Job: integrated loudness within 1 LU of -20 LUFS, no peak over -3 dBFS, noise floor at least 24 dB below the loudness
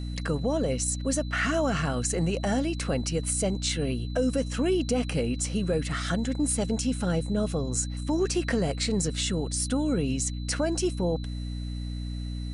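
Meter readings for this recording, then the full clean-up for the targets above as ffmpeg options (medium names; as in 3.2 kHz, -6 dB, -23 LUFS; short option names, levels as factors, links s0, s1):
hum 60 Hz; highest harmonic 300 Hz; hum level -30 dBFS; steady tone 4 kHz; tone level -48 dBFS; loudness -28.0 LUFS; peak level -14.5 dBFS; loudness target -20.0 LUFS
-> -af "bandreject=f=60:t=h:w=4,bandreject=f=120:t=h:w=4,bandreject=f=180:t=h:w=4,bandreject=f=240:t=h:w=4,bandreject=f=300:t=h:w=4"
-af "bandreject=f=4000:w=30"
-af "volume=2.51"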